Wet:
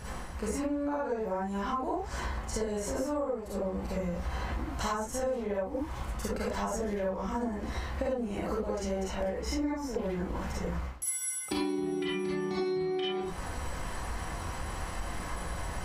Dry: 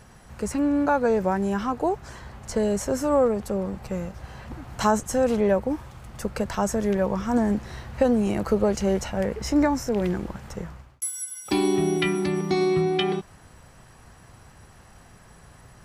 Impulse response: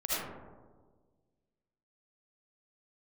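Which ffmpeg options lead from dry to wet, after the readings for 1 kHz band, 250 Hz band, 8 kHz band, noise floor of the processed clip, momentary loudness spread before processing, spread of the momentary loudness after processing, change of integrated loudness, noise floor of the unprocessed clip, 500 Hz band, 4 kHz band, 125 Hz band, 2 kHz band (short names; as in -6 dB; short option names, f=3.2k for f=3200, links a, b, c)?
-7.0 dB, -9.5 dB, -4.0 dB, -39 dBFS, 14 LU, 6 LU, -9.5 dB, -51 dBFS, -8.5 dB, -5.5 dB, -6.0 dB, -6.0 dB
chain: -filter_complex "[0:a]areverse,acompressor=mode=upward:threshold=-27dB:ratio=2.5,areverse[a];[1:a]atrim=start_sample=2205,afade=t=out:st=0.24:d=0.01,atrim=end_sample=11025,asetrate=70560,aresample=44100[b];[a][b]afir=irnorm=-1:irlink=0,acompressor=threshold=-29dB:ratio=12"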